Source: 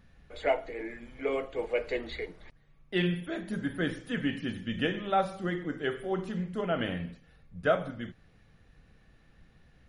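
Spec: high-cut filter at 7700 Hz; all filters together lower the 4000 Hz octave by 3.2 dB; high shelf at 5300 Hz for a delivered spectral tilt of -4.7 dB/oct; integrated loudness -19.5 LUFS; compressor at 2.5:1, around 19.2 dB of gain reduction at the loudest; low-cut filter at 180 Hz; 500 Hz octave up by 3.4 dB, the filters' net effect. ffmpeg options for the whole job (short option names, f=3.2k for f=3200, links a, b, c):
-af "highpass=180,lowpass=7.7k,equalizer=f=500:t=o:g=4.5,equalizer=f=4k:t=o:g=-7.5,highshelf=f=5.3k:g=7.5,acompressor=threshold=-48dB:ratio=2.5,volume=26.5dB"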